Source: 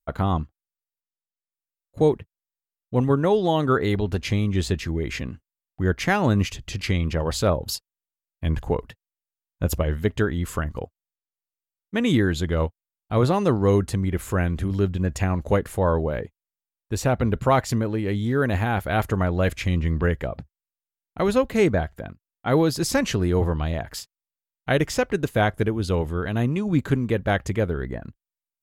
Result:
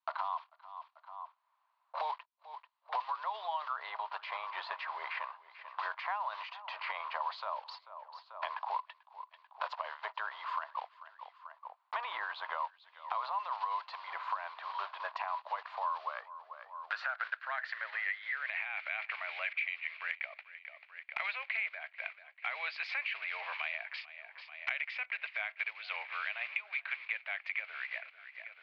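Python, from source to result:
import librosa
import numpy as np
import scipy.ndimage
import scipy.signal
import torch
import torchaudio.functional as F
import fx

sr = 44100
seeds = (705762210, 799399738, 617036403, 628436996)

p1 = fx.block_float(x, sr, bits=5)
p2 = scipy.signal.sosfilt(scipy.signal.cheby1(4, 1.0, [630.0, 4500.0], 'bandpass', fs=sr, output='sos'), p1)
p3 = fx.over_compress(p2, sr, threshold_db=-34.0, ratio=-0.5)
p4 = p2 + (p3 * librosa.db_to_amplitude(1.5))
p5 = fx.filter_sweep_bandpass(p4, sr, from_hz=1000.0, to_hz=2300.0, start_s=15.7, end_s=18.68, q=7.9)
p6 = p5 + fx.echo_feedback(p5, sr, ms=440, feedback_pct=27, wet_db=-23.0, dry=0)
y = fx.band_squash(p6, sr, depth_pct=100)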